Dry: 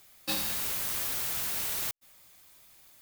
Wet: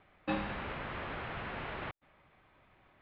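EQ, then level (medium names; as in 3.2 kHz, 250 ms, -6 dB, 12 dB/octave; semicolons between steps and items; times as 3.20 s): Bessel low-pass 1.7 kHz, order 8; distance through air 100 m; +5.0 dB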